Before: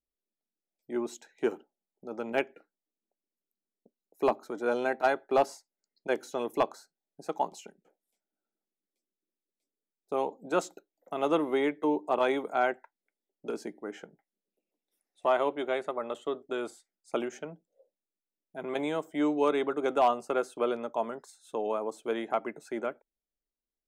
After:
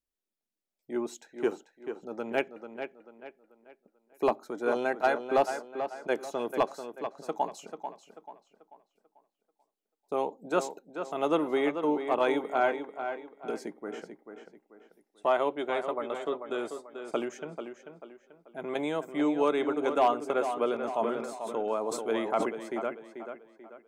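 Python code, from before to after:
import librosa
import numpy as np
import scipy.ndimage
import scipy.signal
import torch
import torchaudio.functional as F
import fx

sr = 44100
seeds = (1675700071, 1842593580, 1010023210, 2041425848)

y = fx.echo_tape(x, sr, ms=439, feedback_pct=39, wet_db=-7.5, lp_hz=3900.0, drive_db=13.0, wow_cents=16)
y = fx.sustainer(y, sr, db_per_s=43.0, at=(20.77, 22.49))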